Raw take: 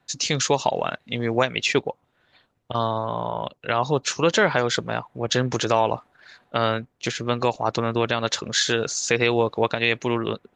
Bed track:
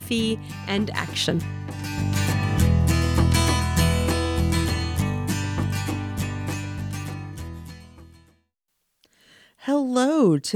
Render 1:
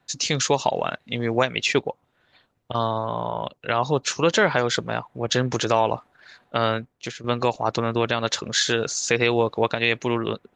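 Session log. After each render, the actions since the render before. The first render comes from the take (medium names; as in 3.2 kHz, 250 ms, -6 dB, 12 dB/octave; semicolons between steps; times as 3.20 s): 6.77–7.24 s: fade out, to -11.5 dB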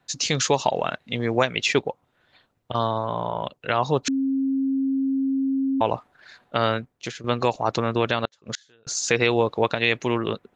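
4.08–5.81 s: bleep 269 Hz -20 dBFS; 8.25–8.87 s: inverted gate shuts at -16 dBFS, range -35 dB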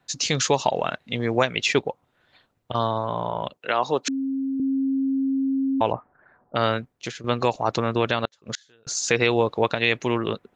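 3.57–4.60 s: high-pass 270 Hz; 5.91–6.55 s: low-pass 1.9 kHz -> 1 kHz 24 dB/octave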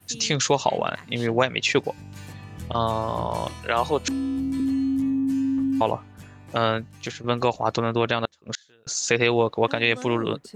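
add bed track -17.5 dB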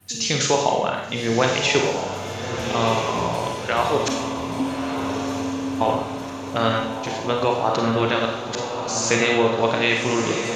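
on a send: echo that smears into a reverb 1275 ms, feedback 53%, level -6.5 dB; on the sum: Schroeder reverb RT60 0.81 s, combs from 31 ms, DRR 1 dB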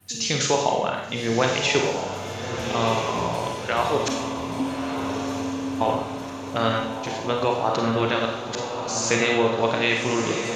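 trim -2 dB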